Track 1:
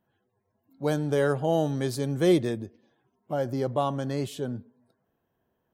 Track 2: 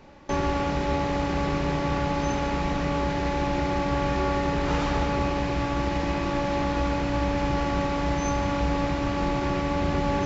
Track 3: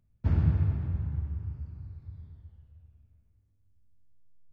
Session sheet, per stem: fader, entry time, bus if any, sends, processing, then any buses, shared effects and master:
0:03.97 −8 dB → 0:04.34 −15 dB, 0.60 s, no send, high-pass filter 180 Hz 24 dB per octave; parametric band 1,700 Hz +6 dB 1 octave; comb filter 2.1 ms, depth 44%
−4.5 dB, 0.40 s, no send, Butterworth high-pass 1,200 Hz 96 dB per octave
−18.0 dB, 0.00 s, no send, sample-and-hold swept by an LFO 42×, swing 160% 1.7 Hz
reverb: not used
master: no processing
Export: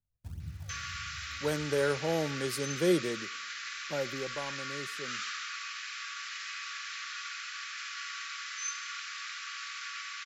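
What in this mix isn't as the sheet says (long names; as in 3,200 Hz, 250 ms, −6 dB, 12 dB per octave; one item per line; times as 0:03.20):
stem 3 −18.0 dB → −26.0 dB
master: extra bass and treble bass +9 dB, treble +8 dB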